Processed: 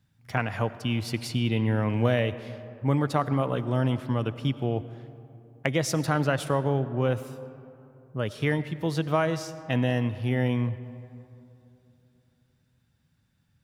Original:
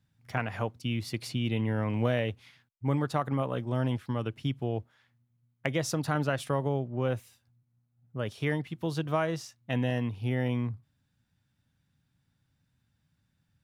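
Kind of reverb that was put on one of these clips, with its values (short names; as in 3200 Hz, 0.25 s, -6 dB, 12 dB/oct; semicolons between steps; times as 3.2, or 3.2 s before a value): digital reverb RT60 3 s, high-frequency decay 0.4×, pre-delay 55 ms, DRR 14 dB; gain +4 dB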